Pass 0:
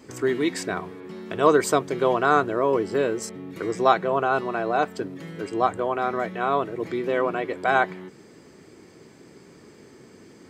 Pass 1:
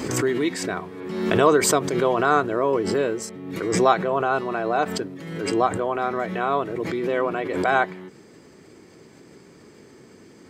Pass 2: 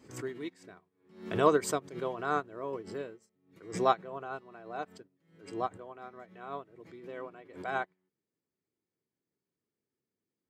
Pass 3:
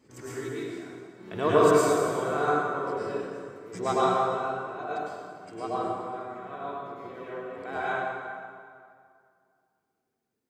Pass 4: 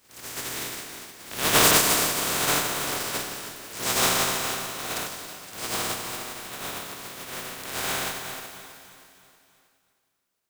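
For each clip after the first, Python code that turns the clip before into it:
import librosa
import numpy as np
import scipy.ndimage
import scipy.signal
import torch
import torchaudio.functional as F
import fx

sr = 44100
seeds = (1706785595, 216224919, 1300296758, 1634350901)

y1 = fx.pre_swell(x, sr, db_per_s=46.0)
y2 = fx.peak_eq(y1, sr, hz=98.0, db=3.0, octaves=1.8)
y2 = fx.upward_expand(y2, sr, threshold_db=-38.0, expansion=2.5)
y2 = y2 * 10.0 ** (-6.0 / 20.0)
y3 = fx.rev_plate(y2, sr, seeds[0], rt60_s=2.2, hf_ratio=0.7, predelay_ms=90, drr_db=-10.0)
y3 = y3 * 10.0 ** (-4.0 / 20.0)
y4 = fx.spec_flatten(y3, sr, power=0.2)
y4 = fx.echo_feedback(y4, sr, ms=318, feedback_pct=51, wet_db=-14.5)
y4 = y4 * 10.0 ** (1.5 / 20.0)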